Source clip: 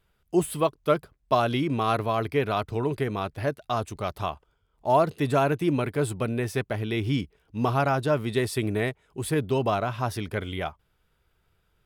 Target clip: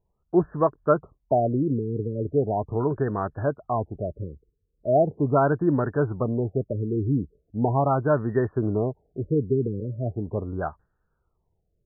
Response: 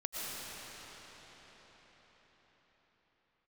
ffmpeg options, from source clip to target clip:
-af "agate=range=-6dB:threshold=-51dB:ratio=16:detection=peak,afftfilt=real='re*lt(b*sr/1024,500*pow(1900/500,0.5+0.5*sin(2*PI*0.39*pts/sr)))':imag='im*lt(b*sr/1024,500*pow(1900/500,0.5+0.5*sin(2*PI*0.39*pts/sr)))':win_size=1024:overlap=0.75,volume=2.5dB"

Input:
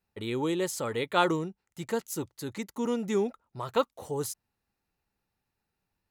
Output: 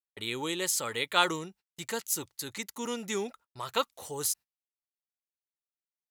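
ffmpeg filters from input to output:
ffmpeg -i in.wav -af "agate=range=-35dB:threshold=-49dB:ratio=16:detection=peak,tiltshelf=frequency=1200:gain=-8" out.wav

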